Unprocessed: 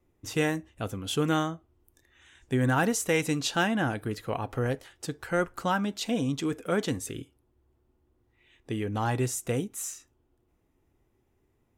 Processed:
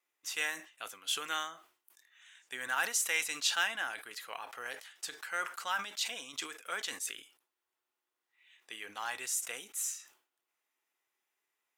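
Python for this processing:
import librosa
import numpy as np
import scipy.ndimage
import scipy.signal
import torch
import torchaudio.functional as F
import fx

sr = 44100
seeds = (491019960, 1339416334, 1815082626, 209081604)

y = scipy.signal.sosfilt(scipy.signal.butter(2, 1500.0, 'highpass', fs=sr, output='sos'), x)
y = fx.quant_float(y, sr, bits=4)
y = fx.sustainer(y, sr, db_per_s=130.0)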